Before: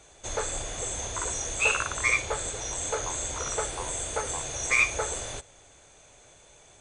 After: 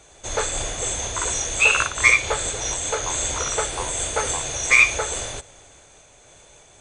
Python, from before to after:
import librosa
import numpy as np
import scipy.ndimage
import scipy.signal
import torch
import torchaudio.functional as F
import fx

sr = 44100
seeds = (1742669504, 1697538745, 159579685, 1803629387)

y = fx.dynamic_eq(x, sr, hz=3100.0, q=0.7, threshold_db=-39.0, ratio=4.0, max_db=5)
y = fx.am_noise(y, sr, seeds[0], hz=5.7, depth_pct=60)
y = y * 10.0 ** (7.5 / 20.0)